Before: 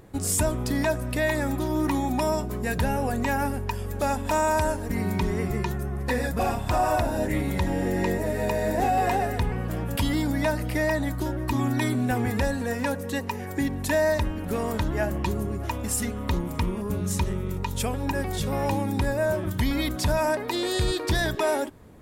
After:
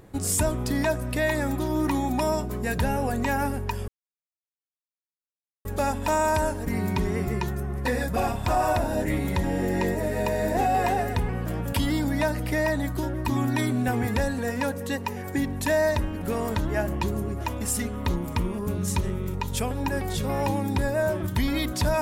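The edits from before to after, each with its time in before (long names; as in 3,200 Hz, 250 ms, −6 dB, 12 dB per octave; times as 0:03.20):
0:03.88: splice in silence 1.77 s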